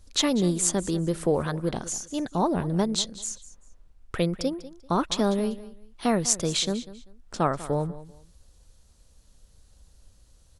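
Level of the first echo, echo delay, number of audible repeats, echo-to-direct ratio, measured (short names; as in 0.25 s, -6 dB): -16.5 dB, 0.195 s, 2, -16.0 dB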